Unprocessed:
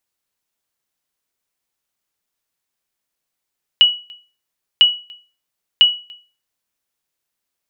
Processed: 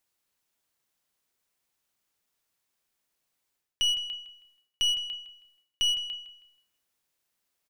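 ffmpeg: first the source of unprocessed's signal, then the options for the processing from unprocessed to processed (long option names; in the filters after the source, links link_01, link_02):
-f lavfi -i "aevalsrc='0.75*(sin(2*PI*2930*mod(t,1))*exp(-6.91*mod(t,1)/0.35)+0.0398*sin(2*PI*2930*max(mod(t,1)-0.29,0))*exp(-6.91*max(mod(t,1)-0.29,0)/0.35))':duration=3:sample_rate=44100"
-filter_complex "[0:a]areverse,acompressor=threshold=-22dB:ratio=16,areverse,aeval=exprs='clip(val(0),-1,0.0447)':channel_layout=same,asplit=2[link_01][link_02];[link_02]adelay=160,lowpass=frequency=4200:poles=1,volume=-12.5dB,asplit=2[link_03][link_04];[link_04]adelay=160,lowpass=frequency=4200:poles=1,volume=0.35,asplit=2[link_05][link_06];[link_06]adelay=160,lowpass=frequency=4200:poles=1,volume=0.35,asplit=2[link_07][link_08];[link_08]adelay=160,lowpass=frequency=4200:poles=1,volume=0.35[link_09];[link_01][link_03][link_05][link_07][link_09]amix=inputs=5:normalize=0"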